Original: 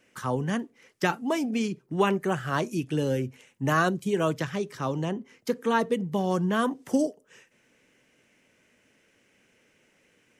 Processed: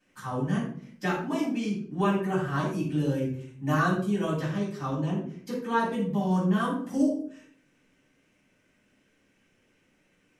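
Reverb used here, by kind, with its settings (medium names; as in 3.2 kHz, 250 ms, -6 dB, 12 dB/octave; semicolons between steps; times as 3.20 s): simulated room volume 590 m³, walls furnished, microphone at 8.4 m; trim -14 dB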